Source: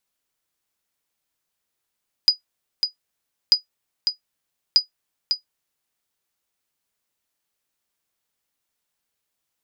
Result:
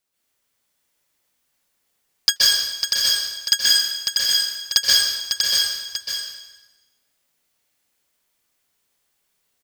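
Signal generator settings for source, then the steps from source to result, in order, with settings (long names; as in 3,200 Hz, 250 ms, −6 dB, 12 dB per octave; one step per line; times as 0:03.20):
ping with an echo 4,930 Hz, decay 0.12 s, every 1.24 s, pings 3, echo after 0.55 s, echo −6.5 dB −5 dBFS
sub-harmonics by changed cycles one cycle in 3, inverted
on a send: single-tap delay 641 ms −4.5 dB
on the sum: dense smooth reverb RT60 1.1 s, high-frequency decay 0.95×, pre-delay 115 ms, DRR −6.5 dB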